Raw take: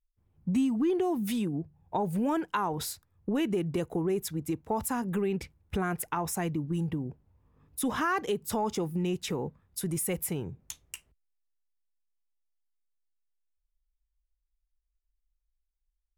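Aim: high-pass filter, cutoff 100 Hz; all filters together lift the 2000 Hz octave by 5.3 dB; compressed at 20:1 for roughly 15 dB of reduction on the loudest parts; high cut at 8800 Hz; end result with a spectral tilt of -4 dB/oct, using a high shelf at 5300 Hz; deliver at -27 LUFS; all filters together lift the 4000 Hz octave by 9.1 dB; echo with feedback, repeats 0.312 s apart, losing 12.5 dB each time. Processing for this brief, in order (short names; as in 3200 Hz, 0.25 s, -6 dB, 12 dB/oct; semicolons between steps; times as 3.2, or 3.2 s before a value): HPF 100 Hz; LPF 8800 Hz; bell 2000 Hz +4.5 dB; bell 4000 Hz +8.5 dB; high shelf 5300 Hz +5 dB; compressor 20:1, threshold -38 dBFS; feedback echo 0.312 s, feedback 24%, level -12.5 dB; gain +15.5 dB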